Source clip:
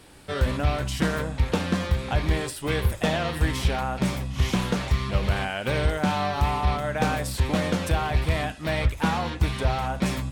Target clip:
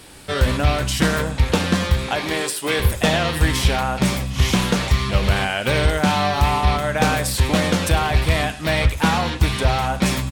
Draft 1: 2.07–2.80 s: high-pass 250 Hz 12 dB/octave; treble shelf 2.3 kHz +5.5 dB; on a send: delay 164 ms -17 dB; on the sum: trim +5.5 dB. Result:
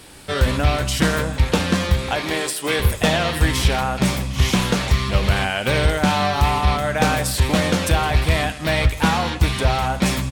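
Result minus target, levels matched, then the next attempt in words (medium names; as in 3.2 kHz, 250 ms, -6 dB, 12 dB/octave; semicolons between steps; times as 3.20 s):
echo 62 ms late
2.07–2.80 s: high-pass 250 Hz 12 dB/octave; treble shelf 2.3 kHz +5.5 dB; on a send: delay 102 ms -17 dB; on the sum: trim +5.5 dB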